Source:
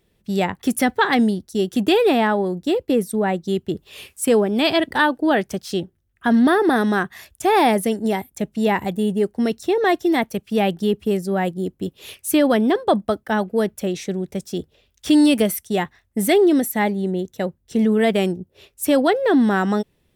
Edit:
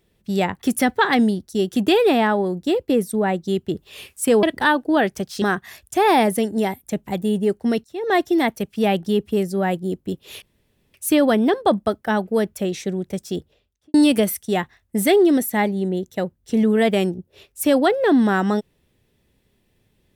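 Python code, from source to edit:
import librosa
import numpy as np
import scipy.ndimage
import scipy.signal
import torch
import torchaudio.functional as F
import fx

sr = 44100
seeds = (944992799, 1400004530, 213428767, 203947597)

y = fx.studio_fade_out(x, sr, start_s=14.57, length_s=0.59)
y = fx.edit(y, sr, fx.cut(start_s=4.43, length_s=0.34),
    fx.cut(start_s=5.76, length_s=1.14),
    fx.cut(start_s=8.55, length_s=0.26),
    fx.fade_in_from(start_s=9.58, length_s=0.3, curve='qua', floor_db=-17.5),
    fx.insert_room_tone(at_s=12.16, length_s=0.52), tone=tone)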